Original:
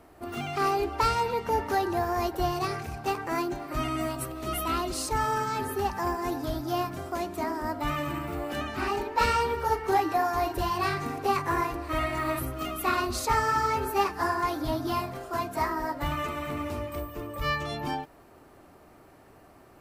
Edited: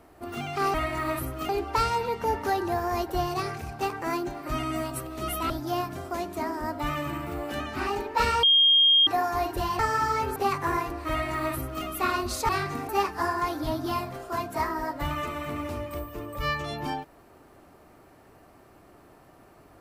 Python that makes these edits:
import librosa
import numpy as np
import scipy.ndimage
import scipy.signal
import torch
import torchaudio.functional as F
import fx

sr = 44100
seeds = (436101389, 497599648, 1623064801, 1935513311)

y = fx.edit(x, sr, fx.cut(start_s=4.75, length_s=1.76),
    fx.bleep(start_s=9.44, length_s=0.64, hz=3230.0, db=-15.5),
    fx.swap(start_s=10.8, length_s=0.4, other_s=13.33, other_length_s=0.57),
    fx.duplicate(start_s=11.94, length_s=0.75, to_s=0.74), tone=tone)